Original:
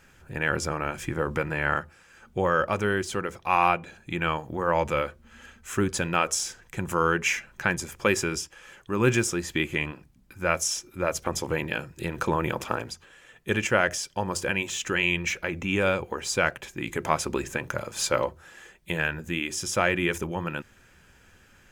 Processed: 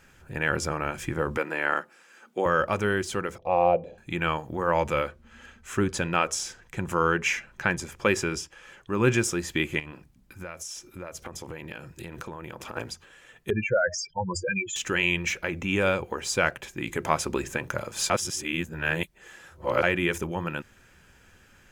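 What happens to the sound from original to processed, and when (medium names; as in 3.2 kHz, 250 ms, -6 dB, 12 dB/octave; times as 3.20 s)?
1.37–2.46 s: high-pass 230 Hz 24 dB/octave
3.38–3.98 s: FFT filter 370 Hz 0 dB, 520 Hz +14 dB, 1.4 kHz -20 dB, 3 kHz -11 dB, 8.3 kHz -21 dB
5.08–9.24 s: treble shelf 8.4 kHz -8 dB
9.79–12.76 s: compression, threshold -35 dBFS
13.50–14.76 s: spectral contrast enhancement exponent 3.7
18.10–19.83 s: reverse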